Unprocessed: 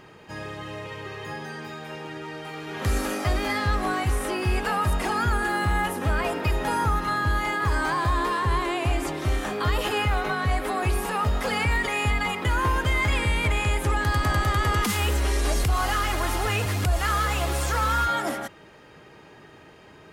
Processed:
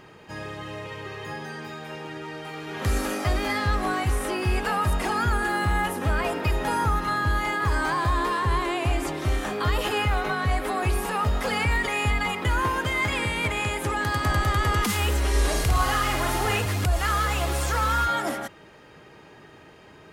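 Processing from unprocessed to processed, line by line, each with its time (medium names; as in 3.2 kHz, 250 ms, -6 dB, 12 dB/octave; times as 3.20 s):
12.62–14.24 s: high-pass 110 Hz
15.29–16.61 s: flutter echo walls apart 9.2 m, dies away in 0.61 s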